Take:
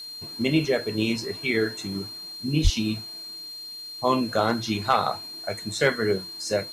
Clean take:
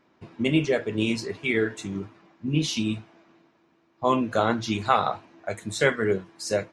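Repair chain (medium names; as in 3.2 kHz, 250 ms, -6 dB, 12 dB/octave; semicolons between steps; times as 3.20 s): clip repair -9.5 dBFS; band-stop 4.2 kHz, Q 30; 2.63–2.75 s: high-pass 140 Hz 24 dB/octave; noise print and reduce 24 dB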